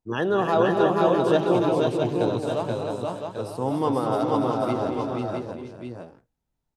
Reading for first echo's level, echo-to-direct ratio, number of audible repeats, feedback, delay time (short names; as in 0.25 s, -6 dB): -9.0 dB, 2.0 dB, 7, no steady repeat, 0.218 s